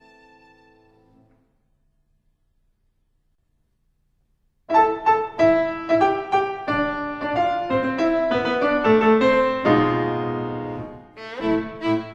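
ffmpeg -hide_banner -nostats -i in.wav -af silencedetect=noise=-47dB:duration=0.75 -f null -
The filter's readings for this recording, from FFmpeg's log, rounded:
silence_start: 1.23
silence_end: 4.69 | silence_duration: 3.45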